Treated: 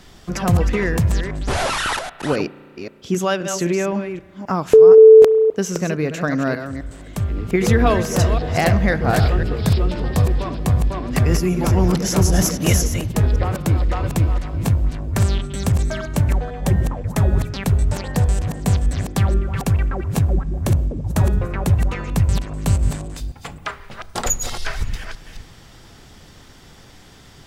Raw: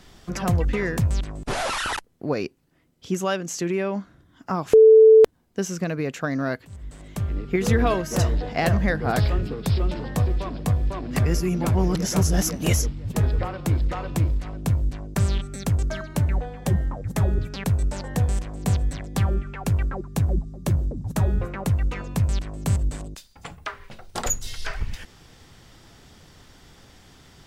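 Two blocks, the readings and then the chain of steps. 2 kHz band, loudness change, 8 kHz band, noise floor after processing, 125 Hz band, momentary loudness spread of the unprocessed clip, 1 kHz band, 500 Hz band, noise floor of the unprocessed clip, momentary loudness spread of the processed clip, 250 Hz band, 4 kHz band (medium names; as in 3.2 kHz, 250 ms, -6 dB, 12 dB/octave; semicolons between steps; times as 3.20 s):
+5.0 dB, +5.0 dB, +5.0 dB, -45 dBFS, +5.0 dB, 10 LU, +5.0 dB, +5.5 dB, -55 dBFS, 11 LU, +5.0 dB, +5.0 dB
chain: chunks repeated in reverse 262 ms, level -8 dB; spring tank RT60 2.4 s, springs 33 ms, chirp 70 ms, DRR 18.5 dB; trim +4.5 dB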